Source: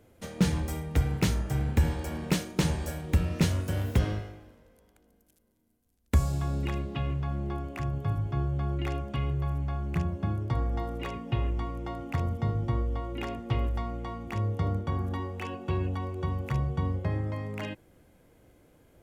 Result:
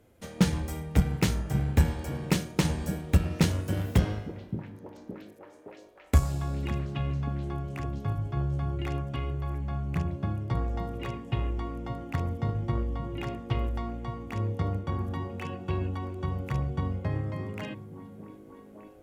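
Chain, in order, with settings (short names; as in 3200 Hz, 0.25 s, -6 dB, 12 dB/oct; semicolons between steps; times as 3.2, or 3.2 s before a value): added harmonics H 3 -17 dB, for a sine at -13.5 dBFS; delay with a stepping band-pass 0.568 s, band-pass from 170 Hz, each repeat 0.7 oct, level -5.5 dB; gain +3 dB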